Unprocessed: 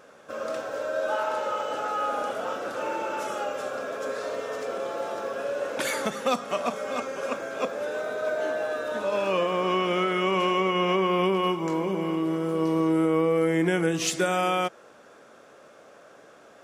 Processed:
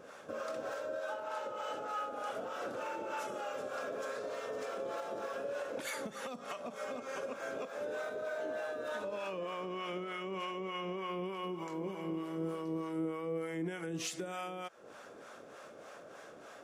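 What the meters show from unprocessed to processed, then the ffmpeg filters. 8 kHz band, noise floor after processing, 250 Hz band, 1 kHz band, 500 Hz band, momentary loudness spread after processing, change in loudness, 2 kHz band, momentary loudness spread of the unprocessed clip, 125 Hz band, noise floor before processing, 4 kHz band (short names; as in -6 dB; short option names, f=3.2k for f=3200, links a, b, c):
-11.5 dB, -53 dBFS, -13.5 dB, -13.0 dB, -12.0 dB, 9 LU, -12.5 dB, -12.0 dB, 8 LU, -13.5 dB, -52 dBFS, -13.5 dB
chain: -filter_complex "[0:a]acompressor=threshold=-33dB:ratio=6,alimiter=level_in=6dB:limit=-24dB:level=0:latency=1:release=246,volume=-6dB,acrossover=split=600[a][b];[a]aeval=exprs='val(0)*(1-0.7/2+0.7/2*cos(2*PI*3.3*n/s))':c=same[c];[b]aeval=exprs='val(0)*(1-0.7/2-0.7/2*cos(2*PI*3.3*n/s))':c=same[d];[c][d]amix=inputs=2:normalize=0,volume=3dB"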